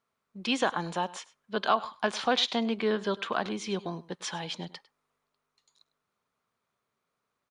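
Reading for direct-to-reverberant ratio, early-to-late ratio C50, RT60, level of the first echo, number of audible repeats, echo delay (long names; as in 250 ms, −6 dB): no reverb audible, no reverb audible, no reverb audible, −19.5 dB, 1, 102 ms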